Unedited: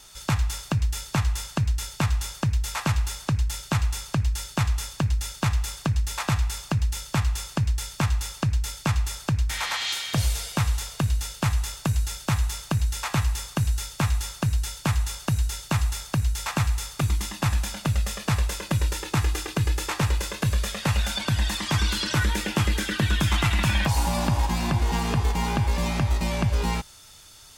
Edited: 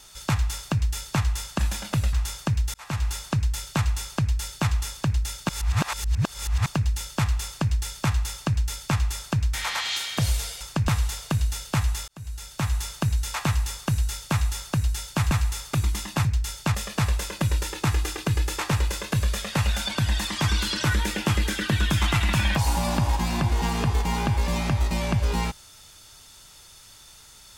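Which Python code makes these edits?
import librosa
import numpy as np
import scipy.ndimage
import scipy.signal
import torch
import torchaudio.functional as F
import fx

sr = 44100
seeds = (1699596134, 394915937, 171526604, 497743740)

y = fx.edit(x, sr, fx.swap(start_s=1.59, length_s=0.5, other_s=17.51, other_length_s=0.54),
    fx.fade_in_span(start_s=2.7, length_s=0.35),
    fx.reverse_span(start_s=5.45, length_s=1.17),
    fx.duplicate(start_s=7.42, length_s=0.27, to_s=10.57),
    fx.fade_in_span(start_s=11.77, length_s=0.73),
    fx.cut(start_s=15.0, length_s=1.57), tone=tone)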